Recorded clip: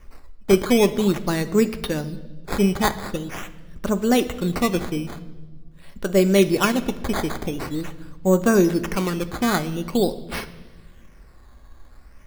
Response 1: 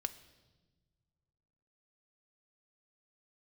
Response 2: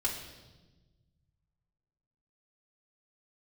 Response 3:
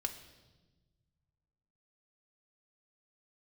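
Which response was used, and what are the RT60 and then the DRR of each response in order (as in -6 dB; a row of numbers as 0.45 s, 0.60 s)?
1; no single decay rate, 1.2 s, 1.2 s; 9.5 dB, -5.0 dB, 4.5 dB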